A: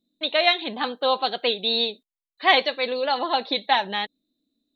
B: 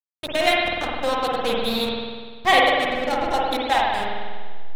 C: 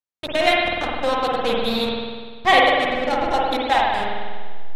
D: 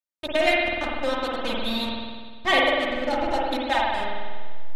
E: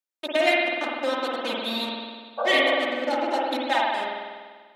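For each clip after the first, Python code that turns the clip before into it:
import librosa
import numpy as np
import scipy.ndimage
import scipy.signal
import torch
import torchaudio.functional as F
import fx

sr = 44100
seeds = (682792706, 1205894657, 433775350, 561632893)

y1 = fx.backlash(x, sr, play_db=-16.5)
y1 = fx.rev_spring(y1, sr, rt60_s=1.6, pass_ms=(49,), chirp_ms=80, drr_db=-3.5)
y2 = fx.high_shelf(y1, sr, hz=8400.0, db=-11.0)
y2 = F.gain(torch.from_numpy(y2), 2.0).numpy()
y3 = y2 + 0.72 * np.pad(y2, (int(3.3 * sr / 1000.0), 0))[:len(y2)]
y3 = F.gain(torch.from_numpy(y3), -5.5).numpy()
y4 = fx.spec_repair(y3, sr, seeds[0], start_s=2.41, length_s=0.28, low_hz=410.0, high_hz=1600.0, source='after')
y4 = scipy.signal.sosfilt(scipy.signal.butter(4, 230.0, 'highpass', fs=sr, output='sos'), y4)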